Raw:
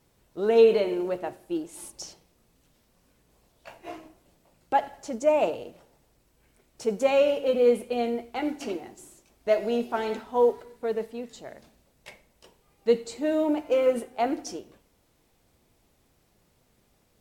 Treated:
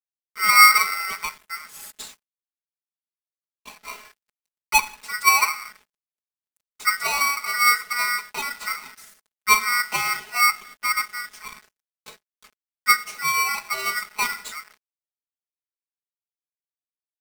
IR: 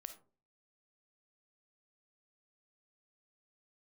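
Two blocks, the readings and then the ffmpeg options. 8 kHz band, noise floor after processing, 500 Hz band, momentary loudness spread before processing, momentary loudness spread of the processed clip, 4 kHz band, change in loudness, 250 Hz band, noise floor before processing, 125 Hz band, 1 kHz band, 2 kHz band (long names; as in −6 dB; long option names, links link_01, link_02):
+18.5 dB, below −85 dBFS, −22.5 dB, 19 LU, 19 LU, +15.5 dB, +6.0 dB, −19.5 dB, −67 dBFS, can't be measured, +10.0 dB, +20.0 dB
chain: -af "acrusher=bits=7:mix=0:aa=0.5,aecho=1:1:4.7:0.92,aeval=exprs='val(0)*sgn(sin(2*PI*1700*n/s))':channel_layout=same"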